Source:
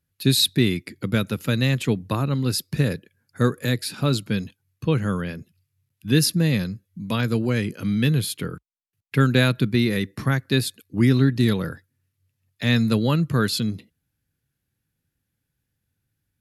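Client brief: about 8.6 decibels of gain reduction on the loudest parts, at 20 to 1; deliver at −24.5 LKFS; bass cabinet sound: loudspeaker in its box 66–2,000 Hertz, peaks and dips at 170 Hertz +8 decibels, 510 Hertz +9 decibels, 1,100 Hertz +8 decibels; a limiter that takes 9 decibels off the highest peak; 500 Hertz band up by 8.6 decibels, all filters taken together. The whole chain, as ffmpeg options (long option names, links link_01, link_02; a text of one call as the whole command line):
ffmpeg -i in.wav -af "equalizer=frequency=500:width_type=o:gain=3.5,acompressor=threshold=-20dB:ratio=20,alimiter=limit=-19.5dB:level=0:latency=1,highpass=frequency=66:width=0.5412,highpass=frequency=66:width=1.3066,equalizer=frequency=170:width_type=q:width=4:gain=8,equalizer=frequency=510:width_type=q:width=4:gain=9,equalizer=frequency=1100:width_type=q:width=4:gain=8,lowpass=frequency=2000:width=0.5412,lowpass=frequency=2000:width=1.3066,volume=3dB" out.wav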